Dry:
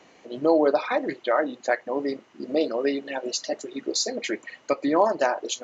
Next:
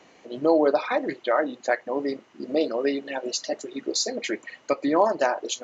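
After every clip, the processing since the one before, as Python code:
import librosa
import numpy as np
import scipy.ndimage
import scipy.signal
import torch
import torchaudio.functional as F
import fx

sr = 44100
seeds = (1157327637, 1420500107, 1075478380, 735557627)

y = x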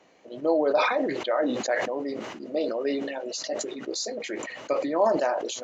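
y = fx.peak_eq(x, sr, hz=580.0, db=4.5, octaves=0.71)
y = fx.chorus_voices(y, sr, voices=4, hz=1.0, base_ms=14, depth_ms=4.3, mix_pct=20)
y = fx.sustainer(y, sr, db_per_s=38.0)
y = F.gain(torch.from_numpy(y), -5.0).numpy()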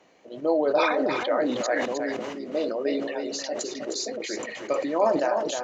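y = x + 10.0 ** (-6.5 / 20.0) * np.pad(x, (int(311 * sr / 1000.0), 0))[:len(x)]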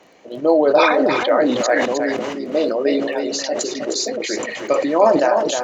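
y = fx.dmg_crackle(x, sr, seeds[0], per_s=10.0, level_db=-42.0)
y = F.gain(torch.from_numpy(y), 8.5).numpy()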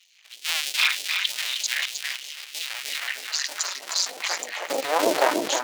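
y = fx.cycle_switch(x, sr, every=2, mode='muted')
y = fx.filter_sweep_highpass(y, sr, from_hz=2800.0, to_hz=350.0, start_s=2.53, end_s=5.45, q=1.5)
y = fx.phaser_stages(y, sr, stages=2, low_hz=170.0, high_hz=1300.0, hz=3.2, feedback_pct=35)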